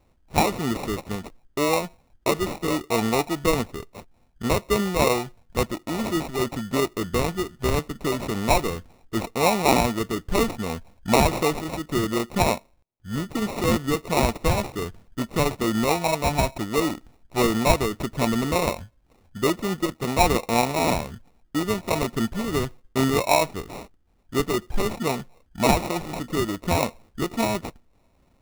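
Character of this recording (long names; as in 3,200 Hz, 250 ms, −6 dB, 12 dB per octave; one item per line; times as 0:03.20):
aliases and images of a low sample rate 1,600 Hz, jitter 0%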